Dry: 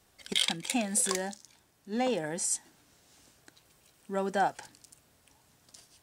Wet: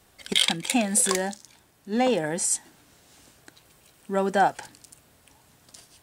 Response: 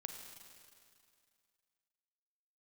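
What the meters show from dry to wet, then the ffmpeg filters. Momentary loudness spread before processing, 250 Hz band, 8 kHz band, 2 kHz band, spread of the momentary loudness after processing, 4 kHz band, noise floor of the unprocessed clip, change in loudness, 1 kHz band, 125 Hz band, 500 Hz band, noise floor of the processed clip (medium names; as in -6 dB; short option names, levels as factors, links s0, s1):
11 LU, +7.0 dB, +6.0 dB, +7.0 dB, 10 LU, +6.0 dB, -67 dBFS, +6.5 dB, +7.0 dB, +7.0 dB, +7.0 dB, -60 dBFS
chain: -af "equalizer=f=5700:t=o:w=0.77:g=-3,volume=2.24"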